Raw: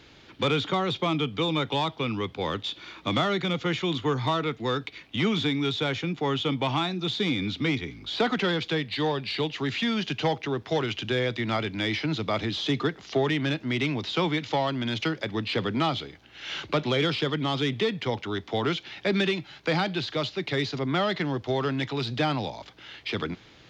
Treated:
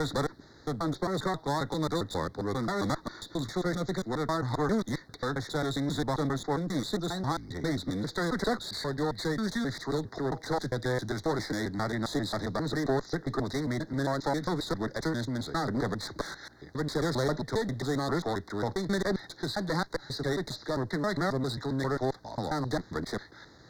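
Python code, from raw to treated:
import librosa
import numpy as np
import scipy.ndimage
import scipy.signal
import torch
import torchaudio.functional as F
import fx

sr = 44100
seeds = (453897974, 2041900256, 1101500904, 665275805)

y = fx.block_reorder(x, sr, ms=134.0, group=5)
y = fx.clip_asym(y, sr, top_db=-33.0, bottom_db=-17.0)
y = scipy.signal.sosfilt(scipy.signal.ellip(3, 1.0, 50, [1900.0, 3900.0], 'bandstop', fs=sr, output='sos'), y)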